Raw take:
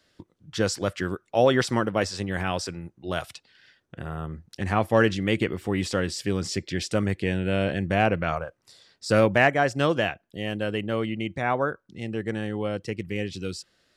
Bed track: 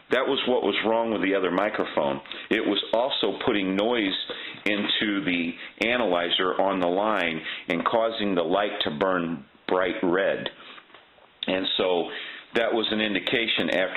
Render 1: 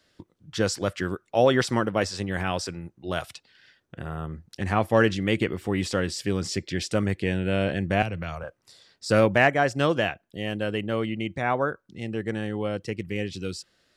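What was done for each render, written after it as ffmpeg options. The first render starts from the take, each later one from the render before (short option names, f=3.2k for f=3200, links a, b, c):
-filter_complex "[0:a]asettb=1/sr,asplit=3[a][b][c];[a]atrim=end=8.024[d];[b]atrim=start=8.02:end=8.44,asetpts=PTS-STARTPTS,afade=t=in:d=0.004:c=qsin,afade=t=out:st=0.416:d=0.004:c=qsin,acrossover=split=140|3000[e][f][g];[f]acompressor=threshold=-32dB:ratio=6:attack=3.2:release=140:knee=2.83:detection=peak[h];[e][h][g]amix=inputs=3:normalize=0[i];[c]atrim=start=8.436[j];[d][i]acrossfade=d=0.004:c1=hsin:c2=qsin[k];[k][j]acrossfade=d=0.004:c1=qsin:c2=hsin"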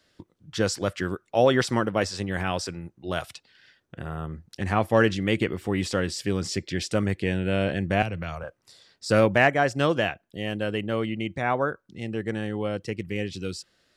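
-af anull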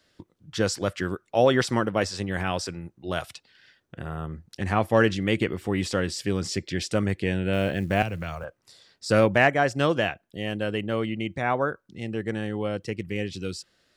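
-filter_complex "[0:a]asettb=1/sr,asplit=3[a][b][c];[a]atrim=end=7.534[d];[b]atrim=start=7.53:end=8.45,asetpts=PTS-STARTPTS,afade=t=in:d=0.004:c=qsin,afade=t=out:st=0.916:d=0.004:c=qsin,acrusher=bits=8:mode=log:mix=0:aa=0.000001[e];[c]atrim=start=8.446[f];[d][e]acrossfade=d=0.004:c1=hsin:c2=qsin[g];[g][f]acrossfade=d=0.004:c1=qsin:c2=hsin"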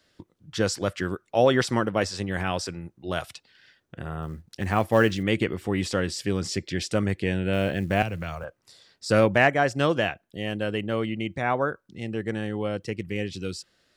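-filter_complex "[0:a]asettb=1/sr,asplit=3[a][b][c];[a]atrim=end=4.224[d];[b]atrim=start=4.22:end=5.23,asetpts=PTS-STARTPTS,afade=t=in:d=0.004:c=qsin,afade=t=out:st=1.006:d=0.004:c=qsin,acrusher=bits=8:mode=log:mix=0:aa=0.000001[e];[c]atrim=start=5.226[f];[d][e]acrossfade=d=0.004:c1=hsin:c2=qsin[g];[g][f]acrossfade=d=0.004:c1=qsin:c2=hsin"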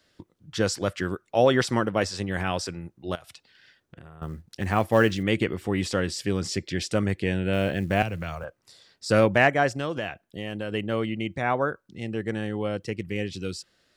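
-filter_complex "[0:a]asettb=1/sr,asplit=3[a][b][c];[a]atrim=end=3.154[d];[b]atrim=start=3.15:end=4.22,asetpts=PTS-STARTPTS,afade=t=in:d=0.004:c=qsin,afade=t=out:st=1.066:d=0.004:c=qsin,acompressor=threshold=-41dB:ratio=12:attack=3.2:release=140:knee=1:detection=peak[e];[c]atrim=start=4.216[f];[d][e]acrossfade=d=0.004:c1=hsin:c2=qsin[g];[g][f]acrossfade=d=0.004:c1=qsin:c2=hsin,asettb=1/sr,asplit=3[h][i][j];[h]atrim=end=9.694[k];[i]atrim=start=9.69:end=10.72,asetpts=PTS-STARTPTS,afade=t=in:d=0.004:c=qsin,afade=t=out:st=1.026:d=0.004:c=qsin,acompressor=threshold=-28dB:ratio=2.5:attack=3.2:release=140:knee=1:detection=peak[l];[j]atrim=start=10.716[m];[k][l]acrossfade=d=0.004:c1=hsin:c2=qsin[n];[n][m]acrossfade=d=0.004:c1=qsin:c2=hsin"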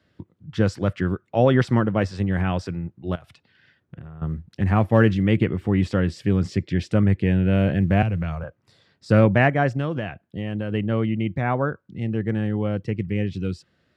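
-af "highpass=78,bass=f=250:g=11,treble=f=4k:g=-14"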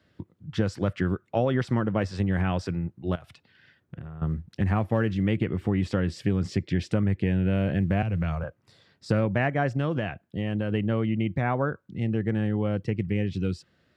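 -af "acompressor=threshold=-21dB:ratio=4"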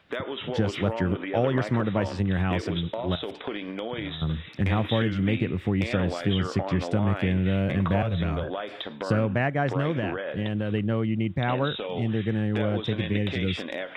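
-filter_complex "[1:a]volume=-9.5dB[a];[0:a][a]amix=inputs=2:normalize=0"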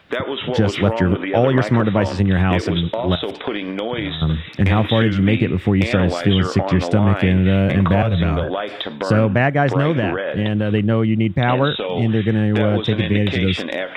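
-af "volume=9dB,alimiter=limit=-3dB:level=0:latency=1"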